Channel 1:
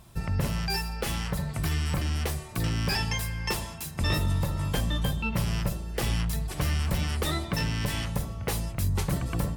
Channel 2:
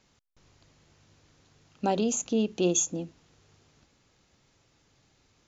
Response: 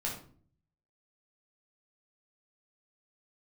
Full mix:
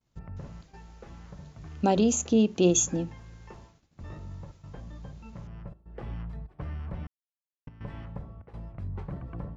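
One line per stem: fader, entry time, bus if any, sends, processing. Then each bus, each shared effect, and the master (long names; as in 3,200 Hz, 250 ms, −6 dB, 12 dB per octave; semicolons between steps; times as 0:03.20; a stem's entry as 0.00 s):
−9.0 dB, 0.00 s, muted 0:07.07–0:07.67, no send, low-pass filter 1,300 Hz 12 dB per octave; gate pattern "xxxxx.xxxxxxxxx." 123 BPM −12 dB; automatic ducking −6 dB, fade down 0.55 s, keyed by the second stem
+1.5 dB, 0.00 s, no send, low-shelf EQ 210 Hz +7.5 dB; mains-hum notches 50/100/150 Hz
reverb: not used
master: downward expander −48 dBFS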